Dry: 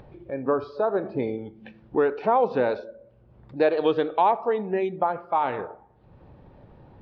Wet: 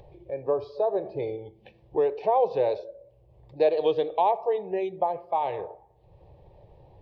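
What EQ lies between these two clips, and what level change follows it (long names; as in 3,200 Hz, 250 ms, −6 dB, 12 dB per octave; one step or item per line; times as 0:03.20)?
phaser with its sweep stopped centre 580 Hz, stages 4
0.0 dB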